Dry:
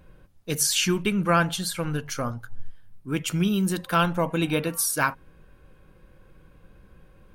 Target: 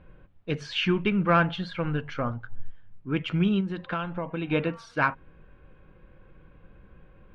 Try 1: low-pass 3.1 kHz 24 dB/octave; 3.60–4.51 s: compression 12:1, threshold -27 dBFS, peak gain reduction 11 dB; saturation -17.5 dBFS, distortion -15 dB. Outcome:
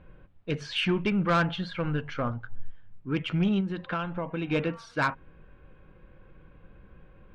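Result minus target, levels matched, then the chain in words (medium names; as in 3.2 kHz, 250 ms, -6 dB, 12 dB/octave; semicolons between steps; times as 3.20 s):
saturation: distortion +18 dB
low-pass 3.1 kHz 24 dB/octave; 3.60–4.51 s: compression 12:1, threshold -27 dBFS, peak gain reduction 11 dB; saturation -6 dBFS, distortion -33 dB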